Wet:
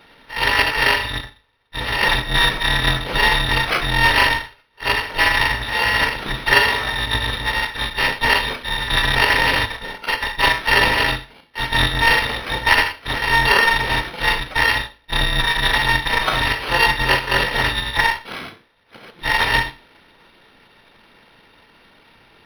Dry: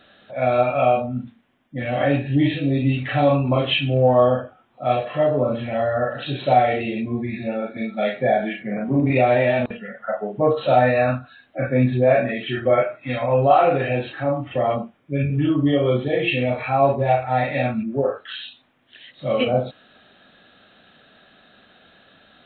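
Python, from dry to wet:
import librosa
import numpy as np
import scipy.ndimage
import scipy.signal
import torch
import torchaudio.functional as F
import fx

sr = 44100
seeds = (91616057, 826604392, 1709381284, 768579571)

p1 = fx.bit_reversed(x, sr, seeds[0], block=256)
p2 = fx.rider(p1, sr, range_db=5, speed_s=0.5)
p3 = p1 + F.gain(torch.from_numpy(p2), -0.5).numpy()
p4 = scipy.signal.sosfilt(scipy.signal.butter(2, 92.0, 'highpass', fs=sr, output='sos'), p3)
p5 = fx.rev_schroeder(p4, sr, rt60_s=0.31, comb_ms=26, drr_db=10.5)
p6 = np.interp(np.arange(len(p5)), np.arange(len(p5))[::6], p5[::6])
y = F.gain(torch.from_numpy(p6), -2.5).numpy()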